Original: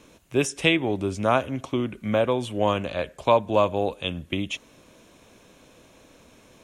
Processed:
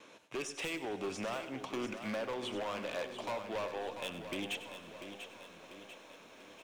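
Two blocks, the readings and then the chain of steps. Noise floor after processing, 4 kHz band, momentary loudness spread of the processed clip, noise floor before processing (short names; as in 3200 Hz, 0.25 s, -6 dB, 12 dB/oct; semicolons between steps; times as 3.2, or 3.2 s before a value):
-57 dBFS, -11.5 dB, 14 LU, -55 dBFS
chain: weighting filter A; gate with hold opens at -48 dBFS; high shelf 6200 Hz -11.5 dB; compressor 6:1, threshold -31 dBFS, peak gain reduction 15 dB; hard clip -34.5 dBFS, distortion -7 dB; echo 98 ms -12.5 dB; Schroeder reverb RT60 3 s, combs from 31 ms, DRR 15.5 dB; lo-fi delay 0.692 s, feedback 55%, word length 11-bit, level -9.5 dB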